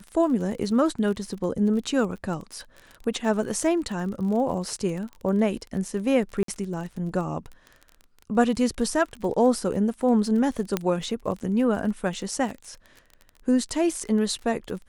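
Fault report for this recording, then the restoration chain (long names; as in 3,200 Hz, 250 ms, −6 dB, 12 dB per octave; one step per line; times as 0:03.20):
surface crackle 32 per second −33 dBFS
0:06.43–0:06.48: drop-out 53 ms
0:10.77: click −9 dBFS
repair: click removal
repair the gap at 0:06.43, 53 ms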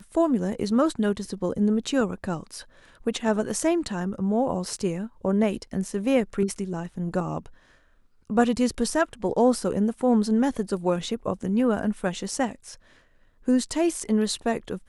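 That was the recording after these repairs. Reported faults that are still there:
0:10.77: click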